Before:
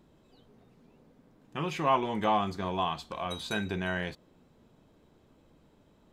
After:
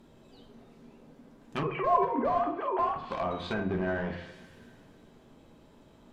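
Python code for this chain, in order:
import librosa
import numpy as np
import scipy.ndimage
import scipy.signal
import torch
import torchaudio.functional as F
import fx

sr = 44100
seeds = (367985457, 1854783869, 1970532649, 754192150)

p1 = fx.sine_speech(x, sr, at=(1.63, 2.96))
p2 = fx.hum_notches(p1, sr, base_hz=50, count=4)
p3 = (np.mod(10.0 ** (26.5 / 20.0) * p2 + 1.0, 2.0) - 1.0) / 10.0 ** (26.5 / 20.0)
p4 = p2 + (p3 * 10.0 ** (-4.0 / 20.0))
p5 = fx.rev_double_slope(p4, sr, seeds[0], early_s=0.65, late_s=2.4, knee_db=-18, drr_db=3.0)
y = fx.env_lowpass_down(p5, sr, base_hz=1100.0, full_db=-26.0)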